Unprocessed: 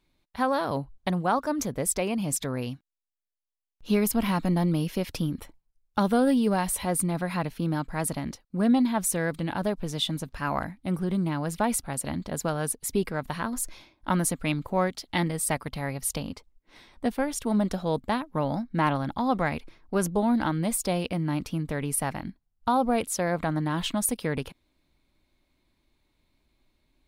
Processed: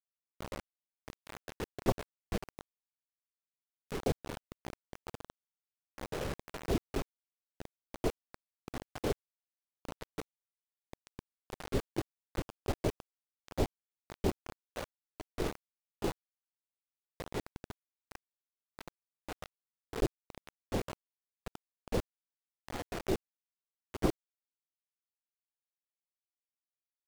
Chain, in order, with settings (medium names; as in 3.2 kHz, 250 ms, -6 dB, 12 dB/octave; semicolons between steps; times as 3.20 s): differentiator; hum notches 50/100/150 Hz; level held to a coarse grid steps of 11 dB; careless resampling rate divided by 4×, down none, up hold; four-pole ladder low-pass 580 Hz, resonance 25%; vibrato 14 Hz 12 cents; pre-echo 109 ms -19 dB; LPC vocoder at 8 kHz whisper; bit crusher 9-bit; loudspeaker Doppler distortion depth 0.49 ms; trim +16.5 dB